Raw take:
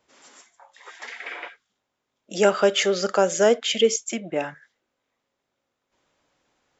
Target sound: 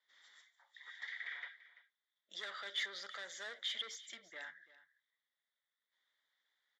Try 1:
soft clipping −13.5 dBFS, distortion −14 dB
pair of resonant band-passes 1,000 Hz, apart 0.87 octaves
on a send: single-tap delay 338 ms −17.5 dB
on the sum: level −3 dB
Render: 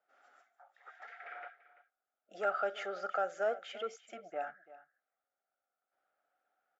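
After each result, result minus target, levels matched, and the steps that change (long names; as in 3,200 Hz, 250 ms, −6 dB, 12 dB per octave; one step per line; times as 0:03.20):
1,000 Hz band +10.5 dB; soft clipping: distortion −9 dB
change: pair of resonant band-passes 2,600 Hz, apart 0.87 octaves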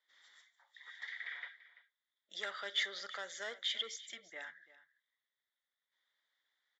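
soft clipping: distortion −9 dB
change: soft clipping −23.5 dBFS, distortion −5 dB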